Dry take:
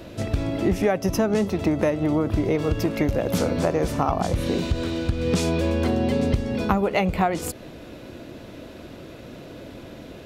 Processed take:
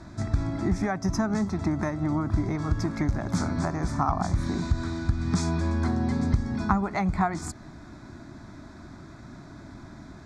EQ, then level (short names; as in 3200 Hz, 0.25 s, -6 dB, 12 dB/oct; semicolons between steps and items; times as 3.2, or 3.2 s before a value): LPF 7700 Hz 24 dB/oct; fixed phaser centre 1200 Hz, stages 4; 0.0 dB